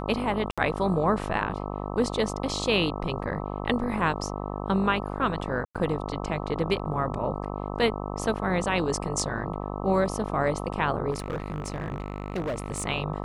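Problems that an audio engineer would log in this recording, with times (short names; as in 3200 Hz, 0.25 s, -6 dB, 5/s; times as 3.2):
buzz 50 Hz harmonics 26 -33 dBFS
0.51–0.58 gap 66 ms
5.65–5.75 gap 97 ms
11.1–12.86 clipped -25.5 dBFS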